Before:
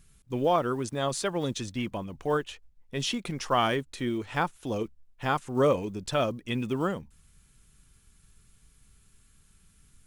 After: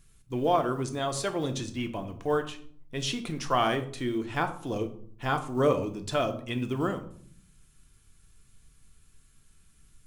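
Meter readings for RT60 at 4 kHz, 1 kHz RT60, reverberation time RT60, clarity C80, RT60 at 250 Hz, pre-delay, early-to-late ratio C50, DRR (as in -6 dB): 0.35 s, 0.55 s, 0.55 s, 16.0 dB, 0.95 s, 3 ms, 12.5 dB, 6.5 dB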